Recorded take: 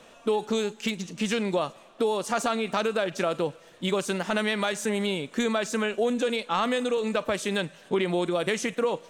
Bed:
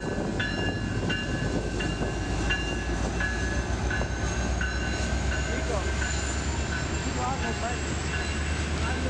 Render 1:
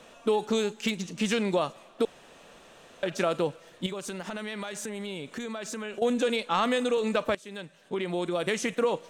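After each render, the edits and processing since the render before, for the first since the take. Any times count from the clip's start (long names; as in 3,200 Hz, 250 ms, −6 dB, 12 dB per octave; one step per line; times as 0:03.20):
0:02.05–0:03.03: fill with room tone
0:03.86–0:06.02: downward compressor 5 to 1, threshold −33 dBFS
0:07.35–0:08.78: fade in, from −19.5 dB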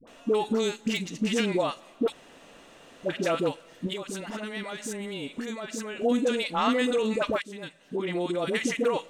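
hollow resonant body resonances 280/2,000/2,800 Hz, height 7 dB
all-pass dispersion highs, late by 74 ms, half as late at 700 Hz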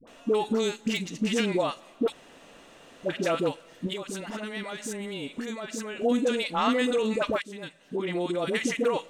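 no processing that can be heard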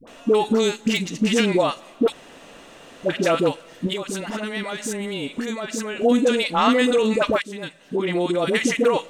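level +7 dB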